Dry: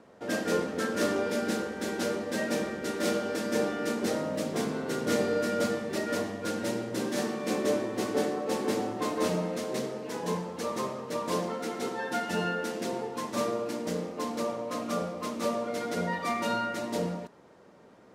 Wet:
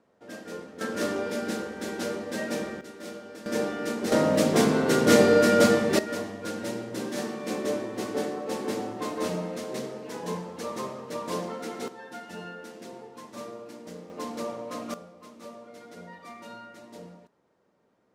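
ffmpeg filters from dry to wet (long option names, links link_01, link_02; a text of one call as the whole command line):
ffmpeg -i in.wav -af "asetnsamples=nb_out_samples=441:pad=0,asendcmd='0.81 volume volume -1dB;2.81 volume volume -11.5dB;3.46 volume volume 0dB;4.12 volume volume 9.5dB;5.99 volume volume -1.5dB;11.88 volume volume -10dB;14.1 volume volume -2dB;14.94 volume volume -14dB',volume=-11dB" out.wav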